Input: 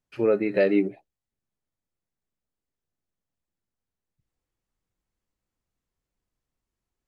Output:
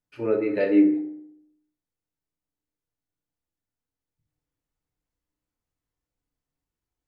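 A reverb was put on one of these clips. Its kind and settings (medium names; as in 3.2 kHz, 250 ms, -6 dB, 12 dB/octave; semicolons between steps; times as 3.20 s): FDN reverb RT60 0.76 s, low-frequency decay 1.1×, high-frequency decay 0.45×, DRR 1.5 dB; trim -5 dB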